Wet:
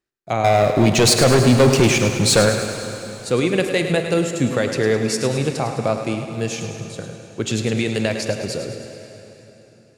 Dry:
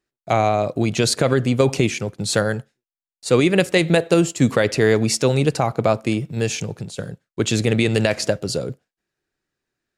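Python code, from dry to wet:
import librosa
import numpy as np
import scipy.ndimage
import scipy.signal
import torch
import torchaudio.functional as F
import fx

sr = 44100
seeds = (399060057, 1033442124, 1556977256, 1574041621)

y = fx.leveller(x, sr, passes=3, at=(0.44, 2.49))
y = fx.echo_thinned(y, sr, ms=105, feedback_pct=61, hz=220.0, wet_db=-9)
y = fx.rev_plate(y, sr, seeds[0], rt60_s=3.9, hf_ratio=0.85, predelay_ms=0, drr_db=8.0)
y = y * 10.0 ** (-3.5 / 20.0)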